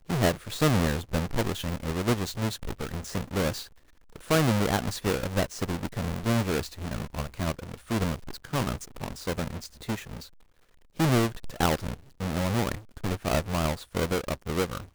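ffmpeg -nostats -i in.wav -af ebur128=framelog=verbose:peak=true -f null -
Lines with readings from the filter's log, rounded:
Integrated loudness:
  I:         -29.3 LUFS
  Threshold: -39.6 LUFS
Loudness range:
  LRA:         4.7 LU
  Threshold: -50.0 LUFS
  LRA low:   -33.0 LUFS
  LRA high:  -28.3 LUFS
True peak:
  Peak:      -11.8 dBFS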